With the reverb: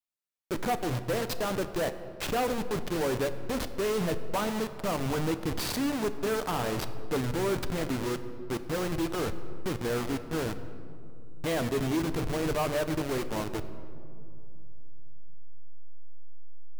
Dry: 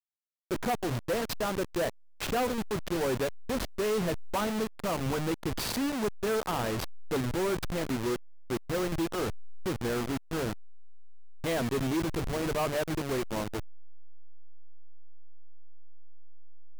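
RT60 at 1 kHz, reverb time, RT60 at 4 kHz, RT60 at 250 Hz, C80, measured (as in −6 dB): 2.5 s, 2.7 s, 1.2 s, 3.6 s, 13.0 dB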